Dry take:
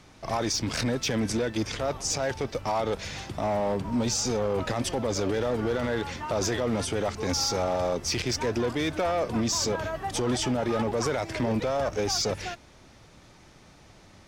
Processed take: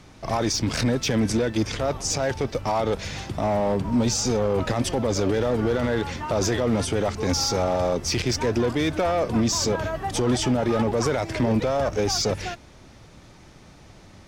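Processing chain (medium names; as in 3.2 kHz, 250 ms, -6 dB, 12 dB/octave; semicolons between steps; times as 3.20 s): bass shelf 390 Hz +4 dB; trim +2.5 dB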